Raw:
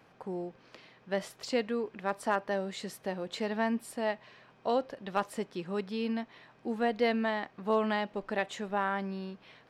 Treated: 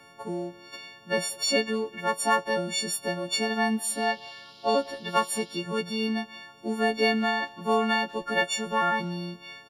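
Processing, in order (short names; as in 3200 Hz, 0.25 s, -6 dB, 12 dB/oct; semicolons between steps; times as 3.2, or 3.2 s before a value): frequency quantiser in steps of 4 st; speakerphone echo 0.19 s, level -20 dB; 3.83–5.57 band noise 2900–5200 Hz -58 dBFS; gain +4.5 dB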